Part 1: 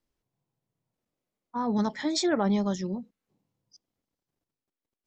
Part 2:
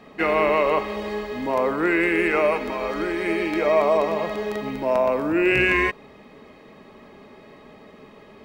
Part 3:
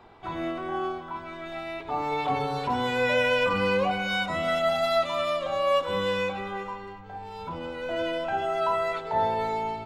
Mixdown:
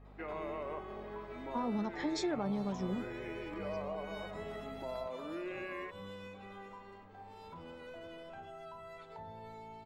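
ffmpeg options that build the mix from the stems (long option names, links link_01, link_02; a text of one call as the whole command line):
ffmpeg -i stem1.wav -i stem2.wav -i stem3.wav -filter_complex "[0:a]aeval=exprs='val(0)+0.00224*(sin(2*PI*50*n/s)+sin(2*PI*2*50*n/s)/2+sin(2*PI*3*50*n/s)/3+sin(2*PI*4*50*n/s)/4+sin(2*PI*5*50*n/s)/5)':channel_layout=same,volume=-1.5dB[link_01];[1:a]highpass=frequency=390:poles=1,equalizer=frequency=7100:width_type=o:width=2.6:gain=-10.5,acompressor=threshold=-30dB:ratio=2,volume=-12.5dB[link_02];[2:a]highshelf=frequency=7600:gain=7.5,acrossover=split=220[link_03][link_04];[link_04]acompressor=threshold=-34dB:ratio=10[link_05];[link_03][link_05]amix=inputs=2:normalize=0,adelay=50,volume=-13dB[link_06];[link_01][link_02]amix=inputs=2:normalize=0,highshelf=frequency=2300:gain=-9,acompressor=threshold=-32dB:ratio=6,volume=0dB[link_07];[link_06][link_07]amix=inputs=2:normalize=0" out.wav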